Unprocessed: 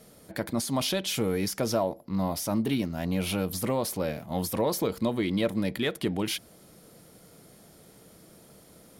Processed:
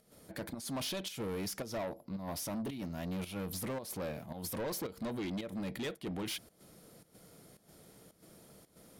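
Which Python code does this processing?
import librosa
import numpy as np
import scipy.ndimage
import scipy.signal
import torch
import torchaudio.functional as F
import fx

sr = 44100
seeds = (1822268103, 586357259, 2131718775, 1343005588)

y = fx.volume_shaper(x, sr, bpm=111, per_beat=1, depth_db=-13, release_ms=115.0, shape='slow start')
y = 10.0 ** (-29.5 / 20.0) * np.tanh(y / 10.0 ** (-29.5 / 20.0))
y = F.gain(torch.from_numpy(y), -4.5).numpy()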